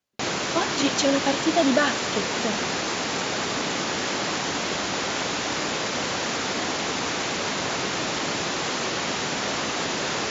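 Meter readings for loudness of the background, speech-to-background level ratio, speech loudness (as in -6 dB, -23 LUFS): -25.5 LUFS, 0.5 dB, -25.0 LUFS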